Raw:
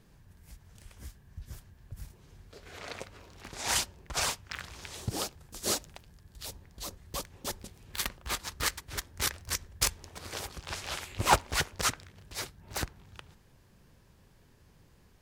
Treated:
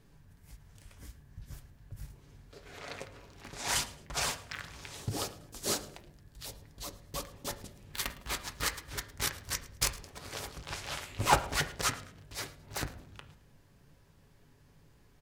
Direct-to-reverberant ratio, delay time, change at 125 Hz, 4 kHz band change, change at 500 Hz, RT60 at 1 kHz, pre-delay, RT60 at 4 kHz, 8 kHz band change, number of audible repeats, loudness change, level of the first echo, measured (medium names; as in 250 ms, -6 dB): 6.0 dB, 109 ms, -0.5 dB, -2.0 dB, -1.0 dB, 0.55 s, 7 ms, 0.45 s, -2.5 dB, 2, -2.0 dB, -20.0 dB